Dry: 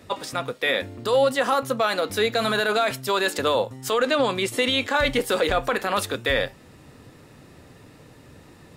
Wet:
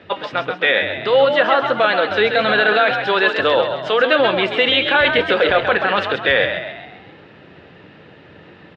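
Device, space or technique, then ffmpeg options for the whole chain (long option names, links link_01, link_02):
frequency-shifting delay pedal into a guitar cabinet: -filter_complex "[0:a]asplit=7[link_01][link_02][link_03][link_04][link_05][link_06][link_07];[link_02]adelay=133,afreqshift=49,volume=-7dB[link_08];[link_03]adelay=266,afreqshift=98,volume=-13.4dB[link_09];[link_04]adelay=399,afreqshift=147,volume=-19.8dB[link_10];[link_05]adelay=532,afreqshift=196,volume=-26.1dB[link_11];[link_06]adelay=665,afreqshift=245,volume=-32.5dB[link_12];[link_07]adelay=798,afreqshift=294,volume=-38.9dB[link_13];[link_01][link_08][link_09][link_10][link_11][link_12][link_13]amix=inputs=7:normalize=0,highpass=110,equalizer=frequency=120:width_type=q:width=4:gain=-6,equalizer=frequency=250:width_type=q:width=4:gain=-7,equalizer=frequency=1100:width_type=q:width=4:gain=-4,equalizer=frequency=1600:width_type=q:width=4:gain=5,equalizer=frequency=3000:width_type=q:width=4:gain=5,lowpass=frequency=3500:width=0.5412,lowpass=frequency=3500:width=1.3066,volume=6dB"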